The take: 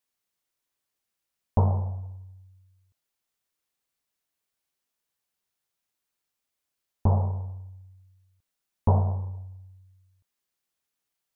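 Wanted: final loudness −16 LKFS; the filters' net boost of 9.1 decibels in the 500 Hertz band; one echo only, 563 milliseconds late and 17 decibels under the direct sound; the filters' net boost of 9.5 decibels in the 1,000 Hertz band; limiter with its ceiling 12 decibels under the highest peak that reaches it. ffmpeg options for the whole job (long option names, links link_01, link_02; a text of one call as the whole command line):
ffmpeg -i in.wav -af "equalizer=frequency=500:width_type=o:gain=8.5,equalizer=frequency=1000:width_type=o:gain=8.5,alimiter=limit=-16dB:level=0:latency=1,aecho=1:1:563:0.141,volume=15dB" out.wav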